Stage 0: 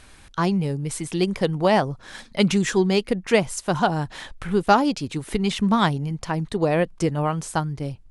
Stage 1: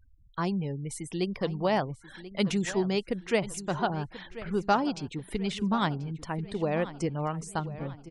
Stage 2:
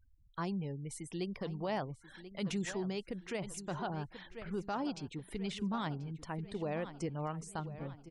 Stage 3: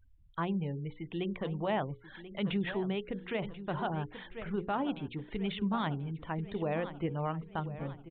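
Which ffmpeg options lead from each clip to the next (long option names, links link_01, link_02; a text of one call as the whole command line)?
ffmpeg -i in.wav -filter_complex "[0:a]afftfilt=real='re*gte(hypot(re,im),0.0126)':imag='im*gte(hypot(re,im),0.0126)':win_size=1024:overlap=0.75,asplit=2[link_01][link_02];[link_02]adelay=1036,lowpass=frequency=4900:poles=1,volume=-15dB,asplit=2[link_03][link_04];[link_04]adelay=1036,lowpass=frequency=4900:poles=1,volume=0.47,asplit=2[link_05][link_06];[link_06]adelay=1036,lowpass=frequency=4900:poles=1,volume=0.47,asplit=2[link_07][link_08];[link_08]adelay=1036,lowpass=frequency=4900:poles=1,volume=0.47[link_09];[link_01][link_03][link_05][link_07][link_09]amix=inputs=5:normalize=0,volume=-8dB" out.wav
ffmpeg -i in.wav -af "alimiter=limit=-21.5dB:level=0:latency=1:release=18,volume=-7dB" out.wav
ffmpeg -i in.wav -af "bandreject=frequency=60:width_type=h:width=6,bandreject=frequency=120:width_type=h:width=6,bandreject=frequency=180:width_type=h:width=6,bandreject=frequency=240:width_type=h:width=6,bandreject=frequency=300:width_type=h:width=6,bandreject=frequency=360:width_type=h:width=6,bandreject=frequency=420:width_type=h:width=6,bandreject=frequency=480:width_type=h:width=6,bandreject=frequency=540:width_type=h:width=6,aresample=8000,aresample=44100,volume=4.5dB" out.wav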